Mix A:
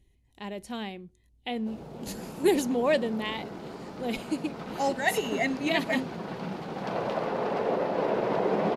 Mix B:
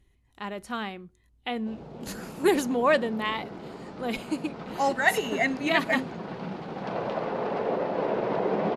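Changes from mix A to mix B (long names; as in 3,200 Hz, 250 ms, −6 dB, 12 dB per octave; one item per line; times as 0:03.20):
speech: add parametric band 1,300 Hz +14.5 dB 0.71 octaves
background: add high-frequency loss of the air 89 metres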